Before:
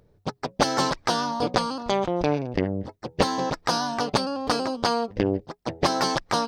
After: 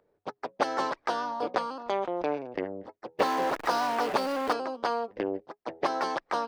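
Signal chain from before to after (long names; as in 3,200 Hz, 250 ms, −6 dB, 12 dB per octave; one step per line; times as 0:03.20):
0:03.19–0:04.53: converter with a step at zero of −21.5 dBFS
three-way crossover with the lows and the highs turned down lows −21 dB, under 290 Hz, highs −13 dB, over 2,700 Hz
level −4 dB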